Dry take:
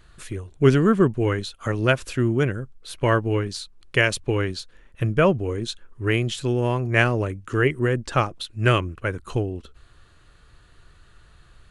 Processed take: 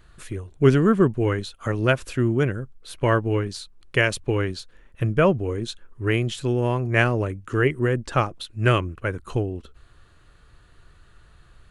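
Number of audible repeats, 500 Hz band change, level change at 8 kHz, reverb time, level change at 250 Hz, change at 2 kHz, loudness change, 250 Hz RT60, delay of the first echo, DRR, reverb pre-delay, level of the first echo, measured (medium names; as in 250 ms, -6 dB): no echo, 0.0 dB, -2.5 dB, no reverb, 0.0 dB, -1.0 dB, -0.5 dB, no reverb, no echo, no reverb, no reverb, no echo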